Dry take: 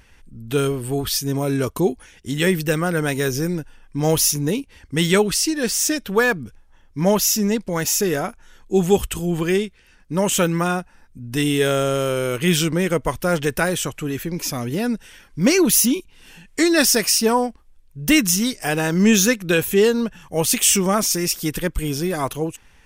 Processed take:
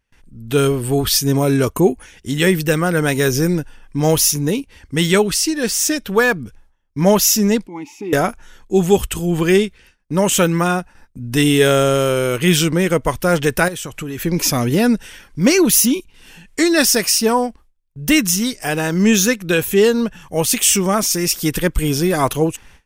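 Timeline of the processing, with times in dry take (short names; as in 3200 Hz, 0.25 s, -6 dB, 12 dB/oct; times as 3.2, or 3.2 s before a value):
1.74–2.02 spectral gain 3000–6300 Hz -9 dB
7.67–8.13 vowel filter u
13.68–14.22 compressor 12:1, threshold -28 dBFS
whole clip: gate with hold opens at -40 dBFS; AGC; gain -1 dB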